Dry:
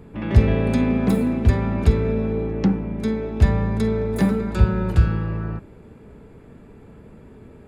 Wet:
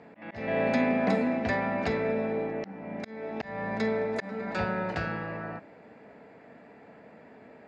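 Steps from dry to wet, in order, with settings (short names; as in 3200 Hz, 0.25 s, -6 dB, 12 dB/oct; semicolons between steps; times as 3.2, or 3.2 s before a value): speaker cabinet 330–5500 Hz, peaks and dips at 380 Hz -10 dB, 690 Hz +8 dB, 1200 Hz -4 dB, 1900 Hz +7 dB, 3400 Hz -6 dB; auto swell 0.318 s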